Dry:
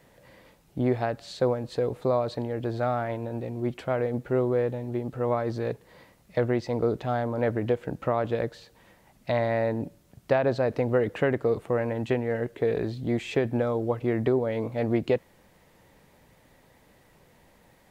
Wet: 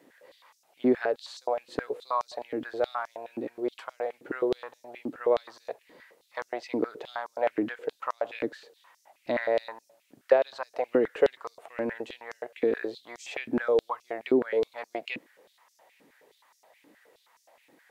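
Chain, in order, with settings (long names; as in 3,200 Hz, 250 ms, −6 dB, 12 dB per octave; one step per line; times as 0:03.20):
high-pass on a step sequencer 9.5 Hz 290–5,700 Hz
level −4 dB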